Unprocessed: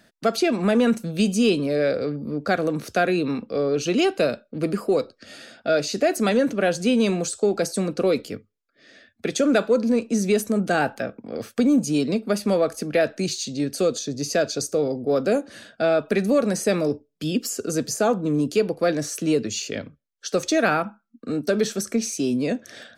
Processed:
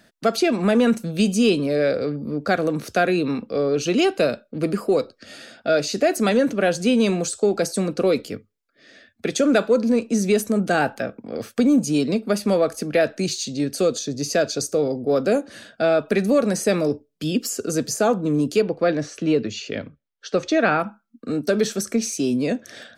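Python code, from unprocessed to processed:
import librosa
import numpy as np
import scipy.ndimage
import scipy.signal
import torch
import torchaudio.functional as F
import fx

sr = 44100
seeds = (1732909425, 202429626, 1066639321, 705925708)

y = fx.lowpass(x, sr, hz=3800.0, slope=12, at=(18.62, 20.8))
y = y * librosa.db_to_amplitude(1.5)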